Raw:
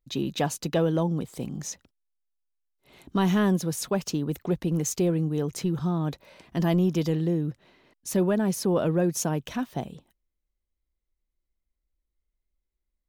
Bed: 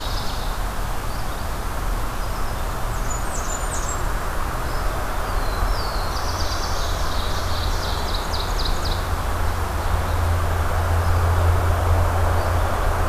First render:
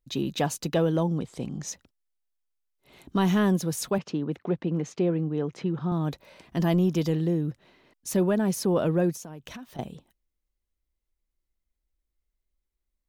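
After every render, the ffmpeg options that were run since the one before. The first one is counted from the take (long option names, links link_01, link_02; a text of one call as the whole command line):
ffmpeg -i in.wav -filter_complex "[0:a]asplit=3[link_01][link_02][link_03];[link_01]afade=type=out:start_time=1.17:duration=0.02[link_04];[link_02]lowpass=7300,afade=type=in:start_time=1.17:duration=0.02,afade=type=out:start_time=1.66:duration=0.02[link_05];[link_03]afade=type=in:start_time=1.66:duration=0.02[link_06];[link_04][link_05][link_06]amix=inputs=3:normalize=0,asettb=1/sr,asplit=3[link_07][link_08][link_09];[link_07]atrim=end=3.984[link_10];[link_08]atrim=start=3.98:end=5.92,asetpts=PTS-STARTPTS,afade=type=in:duration=0.004:curve=qsin,afade=type=out:start_time=1.936:duration=0.004:curve=qsin,highpass=150,lowpass=2800[link_11];[link_09]atrim=start=5.916[link_12];[link_10][link_11]acrossfade=duration=0.004:curve1=hsin:curve2=qsin[link_13];[link_13][link_12]acrossfade=duration=0.004:curve1=qsin:curve2=hsin,asettb=1/sr,asplit=3[link_14][link_15][link_16];[link_14]atrim=end=9.154[link_17];[link_15]atrim=start=9.15:end=9.79,asetpts=PTS-STARTPTS,afade=type=in:duration=0.004:curve=qsin,afade=type=out:start_time=0.636:duration=0.004:curve=qsin,acompressor=threshold=-37dB:ratio=16:attack=3.2:release=140:knee=1:detection=peak[link_18];[link_16]atrim=start=9.786[link_19];[link_17][link_18]acrossfade=duration=0.004:curve1=hsin:curve2=qsin[link_20];[link_20][link_19]acrossfade=duration=0.004:curve1=qsin:curve2=hsin" out.wav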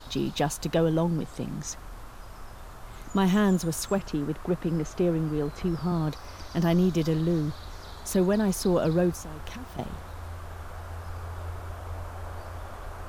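ffmpeg -i in.wav -i bed.wav -filter_complex "[1:a]volume=-18.5dB[link_01];[0:a][link_01]amix=inputs=2:normalize=0" out.wav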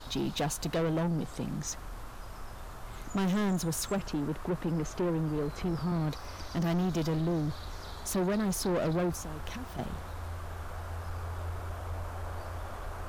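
ffmpeg -i in.wav -af "asoftclip=type=tanh:threshold=-26dB" out.wav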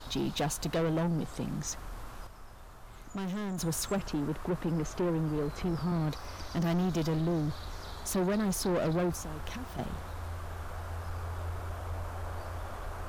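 ffmpeg -i in.wav -filter_complex "[0:a]asplit=3[link_01][link_02][link_03];[link_01]atrim=end=2.272[link_04];[link_02]atrim=start=2.268:end=3.582,asetpts=PTS-STARTPTS,volume=-6.5dB[link_05];[link_03]atrim=start=3.578[link_06];[link_04][link_05]acrossfade=duration=0.004:curve1=hsin:curve2=hsin[link_07];[link_07][link_06]acrossfade=duration=0.004:curve1=hsin:curve2=hsin" out.wav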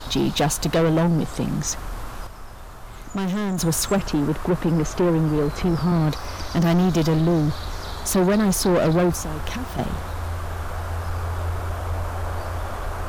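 ffmpeg -i in.wav -af "volume=11dB" out.wav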